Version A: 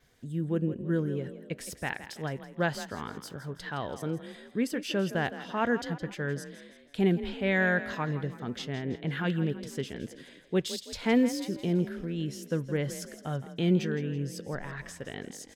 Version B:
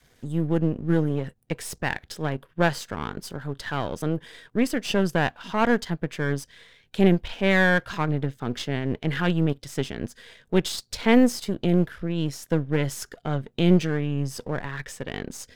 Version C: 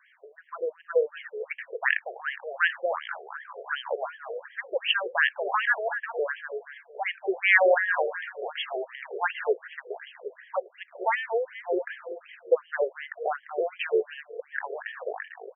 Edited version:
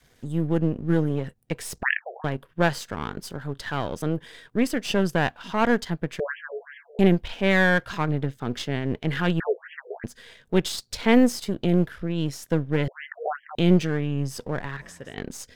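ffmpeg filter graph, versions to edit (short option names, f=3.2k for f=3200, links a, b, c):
-filter_complex "[2:a]asplit=4[a][b][c][d];[1:a]asplit=6[e][f][g][h][i][j];[e]atrim=end=1.832[k];[a]atrim=start=1.828:end=2.242[l];[f]atrim=start=2.238:end=6.202[m];[b]atrim=start=6.198:end=6.992[n];[g]atrim=start=6.988:end=9.402[o];[c]atrim=start=9.398:end=10.042[p];[h]atrim=start=10.038:end=12.882[q];[d]atrim=start=12.878:end=13.552[r];[i]atrim=start=13.548:end=14.772[s];[0:a]atrim=start=14.768:end=15.172[t];[j]atrim=start=15.168[u];[k][l]acrossfade=d=0.004:c1=hsin:c2=hsin[v];[v][m]acrossfade=d=0.004:c1=hsin:c2=hsin[w];[w][n]acrossfade=d=0.004:c1=hsin:c2=hsin[x];[x][o]acrossfade=d=0.004:c1=hsin:c2=hsin[y];[y][p]acrossfade=d=0.004:c1=hsin:c2=hsin[z];[z][q]acrossfade=d=0.004:c1=hsin:c2=hsin[aa];[aa][r]acrossfade=d=0.004:c1=hsin:c2=hsin[ab];[ab][s]acrossfade=d=0.004:c1=hsin:c2=hsin[ac];[ac][t]acrossfade=d=0.004:c1=hsin:c2=hsin[ad];[ad][u]acrossfade=d=0.004:c1=hsin:c2=hsin"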